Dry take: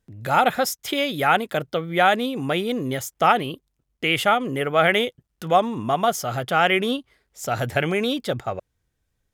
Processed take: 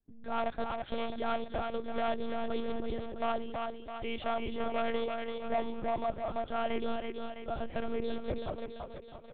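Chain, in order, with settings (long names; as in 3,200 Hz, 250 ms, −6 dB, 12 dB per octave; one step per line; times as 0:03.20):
parametric band 2,200 Hz −12.5 dB 1.8 octaves
hard clipping −18 dBFS, distortion −15 dB
on a send: feedback echo with a high-pass in the loop 331 ms, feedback 56%, high-pass 220 Hz, level −4 dB
on the sum: one-pitch LPC vocoder at 8 kHz 230 Hz
level −9 dB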